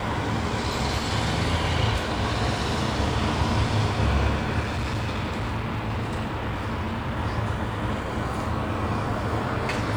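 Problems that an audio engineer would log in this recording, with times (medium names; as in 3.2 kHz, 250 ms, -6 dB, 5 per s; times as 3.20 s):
4.60–7.19 s: clipped -24 dBFS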